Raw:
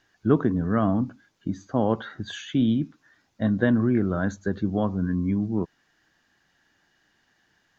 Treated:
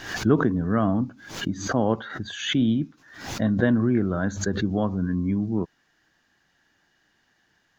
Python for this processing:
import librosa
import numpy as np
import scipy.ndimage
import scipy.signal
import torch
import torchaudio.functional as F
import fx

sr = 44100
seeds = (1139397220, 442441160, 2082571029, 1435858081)

y = fx.pre_swell(x, sr, db_per_s=86.0)